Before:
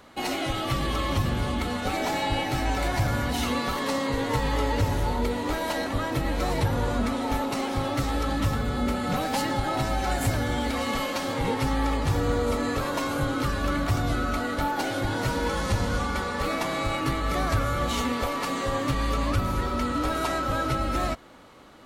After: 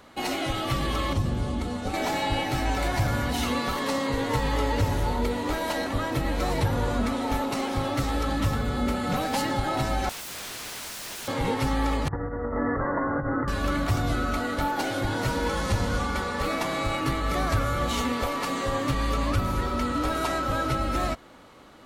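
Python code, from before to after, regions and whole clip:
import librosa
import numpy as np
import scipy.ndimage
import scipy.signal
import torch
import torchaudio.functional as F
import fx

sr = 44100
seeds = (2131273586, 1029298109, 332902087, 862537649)

y = fx.chain(x, sr, fx.lowpass(hz=9300.0, slope=12),
    fx.peak_eq(hz=2100.0, db=-8.5, octaves=2.7), at=(1.13, 1.94))
y = fx.chain(y, sr, fx.overflow_wrap(gain_db=31.5),
    fx.doppler_dist(depth_ms=0.3), at=(10.09, 11.28))
y = fx.chain(y, sr, fx.brickwall_lowpass(high_hz=2100.0),
    fx.over_compress(threshold_db=-27.0, ratio=-0.5), at=(12.08, 13.48))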